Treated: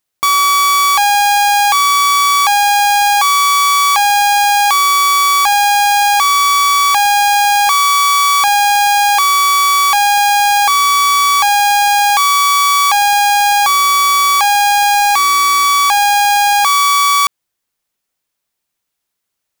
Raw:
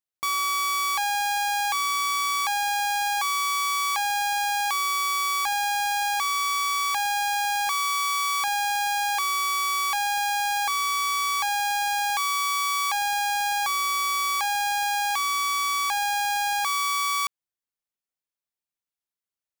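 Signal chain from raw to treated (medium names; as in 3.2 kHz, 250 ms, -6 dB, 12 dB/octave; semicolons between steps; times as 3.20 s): 14.94–15.65 s: band-stop 3.1 kHz, Q 7.3; in parallel at -7 dB: companded quantiser 2-bit; on the sum: loudness maximiser +22.5 dB; trim -6 dB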